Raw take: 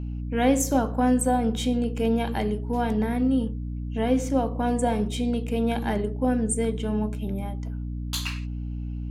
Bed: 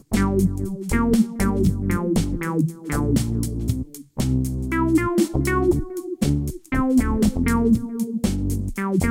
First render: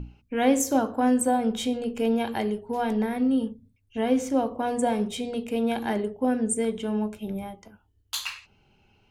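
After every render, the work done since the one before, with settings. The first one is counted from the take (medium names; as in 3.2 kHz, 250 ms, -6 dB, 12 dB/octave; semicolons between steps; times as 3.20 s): hum notches 60/120/180/240/300 Hz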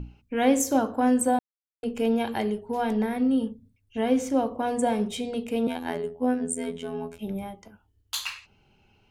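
1.39–1.83 s: mute; 5.67–7.19 s: robot voice 83.6 Hz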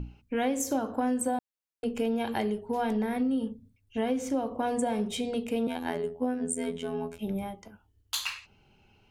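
compression 6:1, threshold -25 dBFS, peak gain reduction 9.5 dB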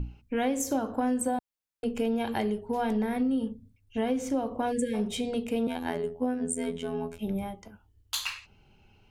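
4.72–4.94 s: spectral selection erased 520–1600 Hz; bass shelf 91 Hz +6.5 dB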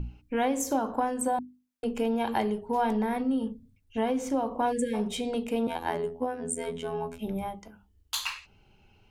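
hum notches 50/100/150/200/250/300 Hz; dynamic bell 950 Hz, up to +7 dB, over -48 dBFS, Q 2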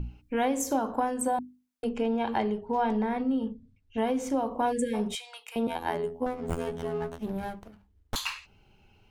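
1.89–3.98 s: distance through air 91 m; 5.15–5.56 s: inverse Chebyshev high-pass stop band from 170 Hz, stop band 80 dB; 6.26–8.16 s: sliding maximum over 17 samples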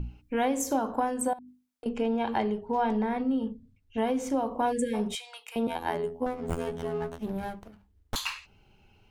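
1.33–1.86 s: compression 12:1, threshold -41 dBFS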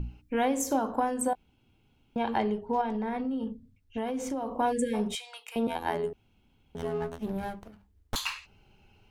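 1.35–2.16 s: room tone; 2.81–4.52 s: compression, threshold -28 dBFS; 6.13–6.75 s: room tone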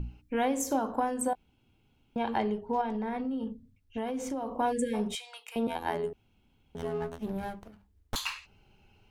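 trim -1.5 dB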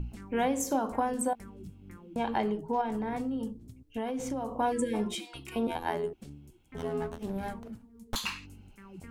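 add bed -27 dB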